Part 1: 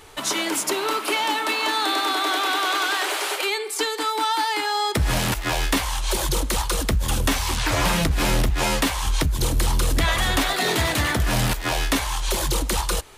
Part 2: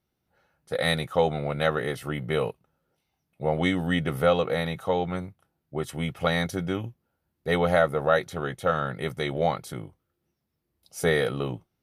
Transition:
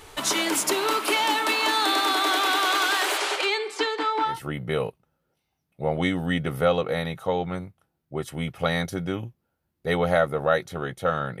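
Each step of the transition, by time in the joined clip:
part 1
3.17–4.40 s: low-pass 8.4 kHz -> 1.8 kHz
4.32 s: go over to part 2 from 1.93 s, crossfade 0.16 s

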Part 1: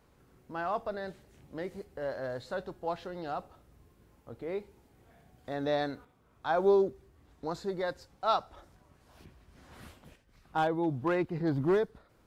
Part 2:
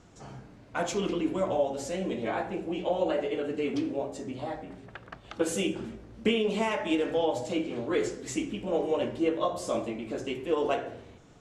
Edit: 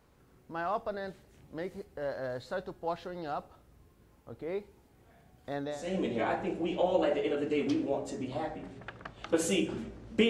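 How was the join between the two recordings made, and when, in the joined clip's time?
part 1
5.76 s: go over to part 2 from 1.83 s, crossfade 0.38 s quadratic

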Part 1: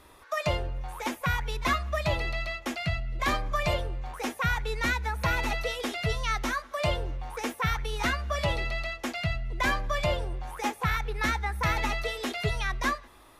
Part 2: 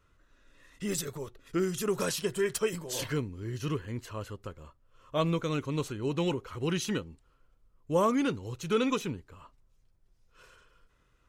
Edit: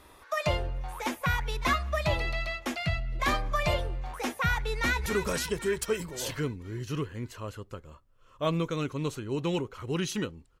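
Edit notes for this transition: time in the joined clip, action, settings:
part 1
4.70–5.06 s: echo throw 260 ms, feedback 65%, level -7.5 dB
5.06 s: go over to part 2 from 1.79 s

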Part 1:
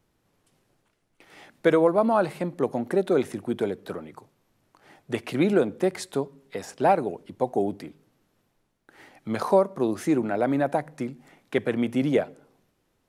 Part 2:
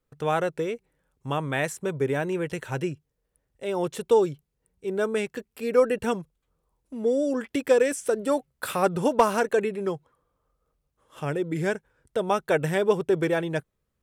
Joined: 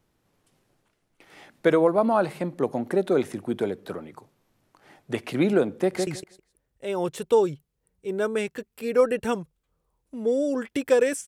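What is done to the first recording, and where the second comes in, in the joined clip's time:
part 1
5.76–6.07 s: echo throw 160 ms, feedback 15%, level -4 dB
6.07 s: go over to part 2 from 2.86 s

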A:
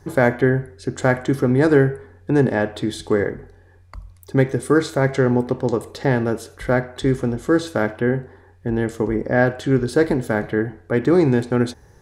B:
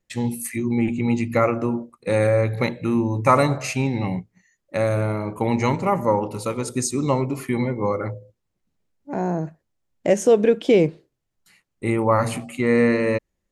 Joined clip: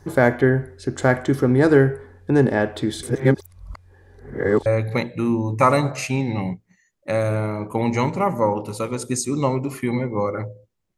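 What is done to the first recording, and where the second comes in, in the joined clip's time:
A
3.03–4.66 s: reverse
4.66 s: go over to B from 2.32 s

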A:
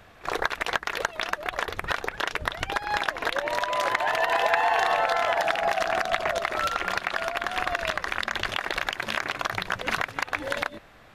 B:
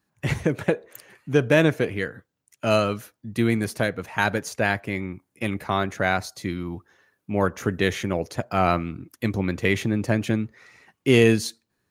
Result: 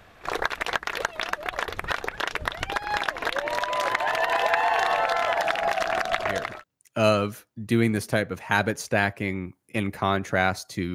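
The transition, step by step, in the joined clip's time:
A
6.42 s: go over to B from 2.09 s, crossfade 0.44 s equal-power

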